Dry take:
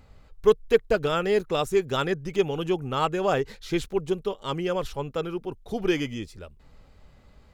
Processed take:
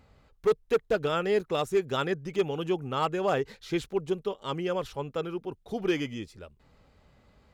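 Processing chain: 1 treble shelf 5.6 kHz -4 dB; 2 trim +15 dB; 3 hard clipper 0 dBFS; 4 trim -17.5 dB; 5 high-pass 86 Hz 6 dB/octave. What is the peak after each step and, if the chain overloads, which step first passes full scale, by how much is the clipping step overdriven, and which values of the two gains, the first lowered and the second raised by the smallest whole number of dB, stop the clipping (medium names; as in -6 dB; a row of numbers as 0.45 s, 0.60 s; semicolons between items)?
-6.0 dBFS, +9.0 dBFS, 0.0 dBFS, -17.5 dBFS, -15.5 dBFS; step 2, 9.0 dB; step 2 +6 dB, step 4 -8.5 dB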